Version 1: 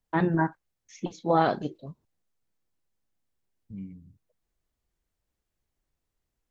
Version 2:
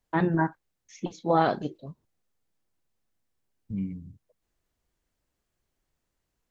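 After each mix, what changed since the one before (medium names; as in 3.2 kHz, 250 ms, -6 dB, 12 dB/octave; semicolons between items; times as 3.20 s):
second voice +8.0 dB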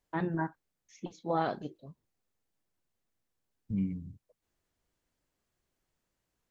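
first voice -8.0 dB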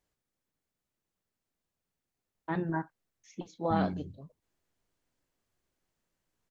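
first voice: entry +2.35 s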